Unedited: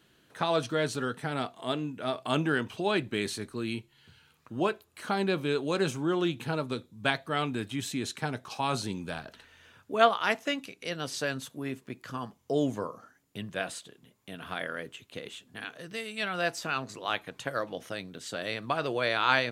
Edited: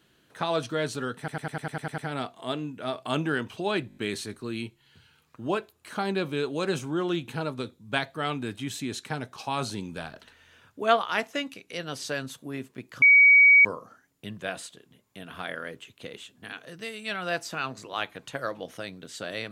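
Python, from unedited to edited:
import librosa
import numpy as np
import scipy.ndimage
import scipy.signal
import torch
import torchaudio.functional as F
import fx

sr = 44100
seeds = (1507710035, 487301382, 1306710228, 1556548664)

y = fx.edit(x, sr, fx.stutter(start_s=1.18, slice_s=0.1, count=9),
    fx.stutter(start_s=3.08, slice_s=0.02, count=5),
    fx.bleep(start_s=12.14, length_s=0.63, hz=2260.0, db=-12.0), tone=tone)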